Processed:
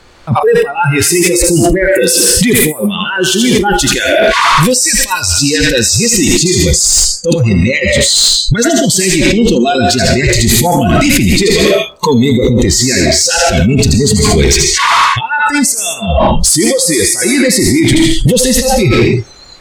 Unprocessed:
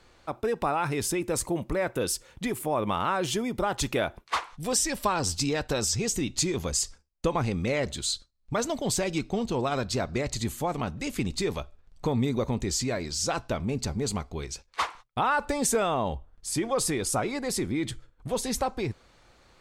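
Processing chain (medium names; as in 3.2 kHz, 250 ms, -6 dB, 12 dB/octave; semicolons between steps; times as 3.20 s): 11.43–12.32 s: high-pass 280 Hz 6 dB/octave; thinning echo 80 ms, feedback 18%, high-pass 420 Hz, level -5.5 dB; on a send at -6 dB: reverberation RT60 0.50 s, pre-delay 100 ms; on the sum: compressor with a negative ratio -35 dBFS, ratio -1; spectral noise reduction 24 dB; saturation -25.5 dBFS, distortion -18 dB; loudness maximiser +34 dB; trim -1 dB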